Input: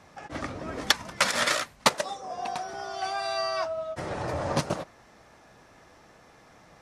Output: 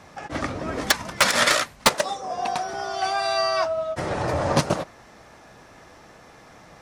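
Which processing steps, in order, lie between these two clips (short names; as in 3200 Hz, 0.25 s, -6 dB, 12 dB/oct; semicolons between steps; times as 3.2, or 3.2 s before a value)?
wavefolder -14 dBFS; gain +6.5 dB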